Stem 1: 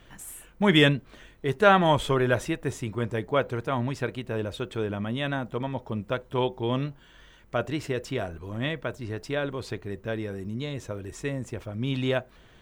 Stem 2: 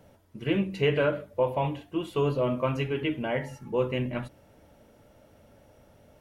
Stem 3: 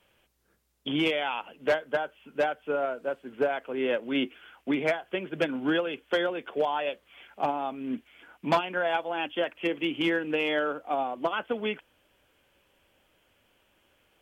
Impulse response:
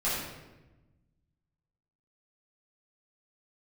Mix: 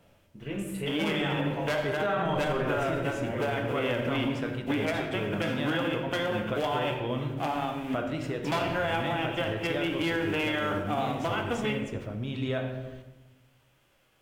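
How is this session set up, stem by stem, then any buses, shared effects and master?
-0.5 dB, 0.40 s, bus A, send -16.5 dB, dry
-7.0 dB, 0.00 s, bus A, send -13.5 dB, dry
-2.5 dB, 0.00 s, no bus, send -11 dB, spectral whitening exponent 0.6
bus A: 0.0 dB, compressor 2:1, threshold -37 dBFS, peak gain reduction 13 dB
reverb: on, RT60 1.1 s, pre-delay 6 ms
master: high shelf 6200 Hz -6 dB; limiter -19.5 dBFS, peak gain reduction 8.5 dB

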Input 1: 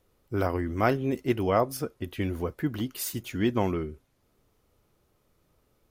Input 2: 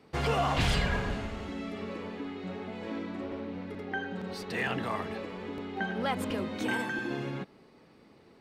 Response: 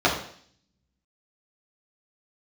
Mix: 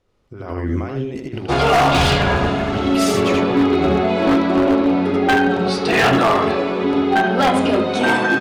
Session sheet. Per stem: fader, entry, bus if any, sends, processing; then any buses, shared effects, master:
-5.0 dB, 0.00 s, no send, echo send -4 dB, LPF 5800 Hz 12 dB/oct; negative-ratio compressor -34 dBFS, ratio -1
+1.0 dB, 1.35 s, send -11.5 dB, no echo send, steep low-pass 11000 Hz 96 dB/oct; low shelf 340 Hz -4.5 dB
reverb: on, RT60 0.55 s, pre-delay 3 ms
echo: echo 80 ms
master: notches 60/120/180/240/300 Hz; AGC gain up to 15 dB; wavefolder -8 dBFS

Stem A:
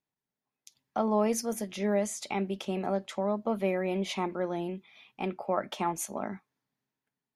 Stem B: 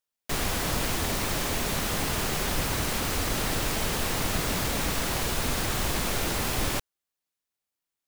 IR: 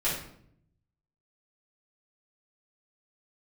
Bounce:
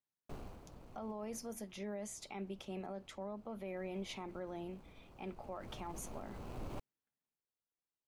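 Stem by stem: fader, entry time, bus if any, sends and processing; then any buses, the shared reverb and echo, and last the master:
-10.5 dB, 0.00 s, no send, dry
1.37 s -14.5 dB -> 1.58 s -23.5 dB -> 3.4 s -23.5 dB -> 3.99 s -17 dB -> 5.23 s -17 dB -> 5.84 s -6 dB, 0.00 s, no send, median filter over 25 samples; auto duck -11 dB, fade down 0.35 s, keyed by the first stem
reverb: off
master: limiter -35 dBFS, peak gain reduction 9.5 dB

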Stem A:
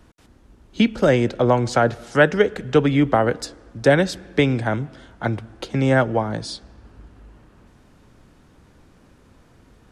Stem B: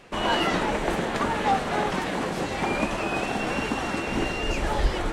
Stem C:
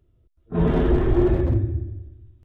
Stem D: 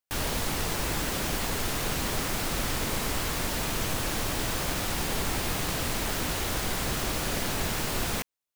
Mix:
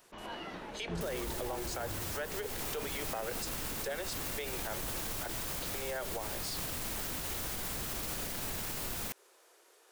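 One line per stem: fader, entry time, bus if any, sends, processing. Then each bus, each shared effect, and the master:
-6.5 dB, 0.00 s, bus A, no send, Chebyshev high-pass 370 Hz, order 5; high shelf 4000 Hz +7.5 dB
-19.5 dB, 0.00 s, no bus, no send, steep low-pass 6100 Hz
-13.5 dB, 0.35 s, bus A, no send, dry
-4.5 dB, 0.90 s, bus A, no send, dry
bus A: 0.0 dB, high shelf 8500 Hz +9.5 dB; compressor 6:1, threshold -31 dBFS, peak gain reduction 14.5 dB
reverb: off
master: limiter -28 dBFS, peak gain reduction 8 dB

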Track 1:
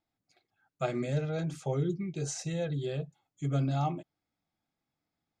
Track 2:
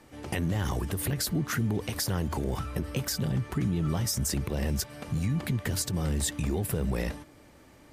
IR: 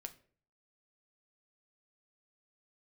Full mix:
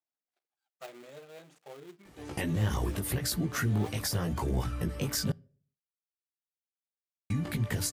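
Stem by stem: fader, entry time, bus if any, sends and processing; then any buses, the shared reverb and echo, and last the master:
-13.0 dB, 0.00 s, send -7.5 dB, switching dead time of 0.23 ms; HPF 420 Hz 12 dB/oct
0.0 dB, 2.05 s, muted 5.32–7.3, send -8.5 dB, chorus voices 2, 0.8 Hz, delay 18 ms, depth 1.9 ms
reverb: on, RT60 0.50 s, pre-delay 6 ms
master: dry

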